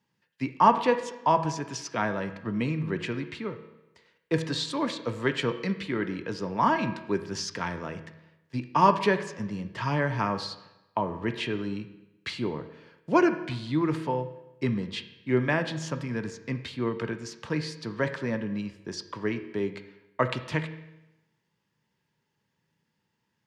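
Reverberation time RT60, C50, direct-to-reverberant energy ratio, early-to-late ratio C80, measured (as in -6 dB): 0.95 s, 11.0 dB, 8.0 dB, 13.0 dB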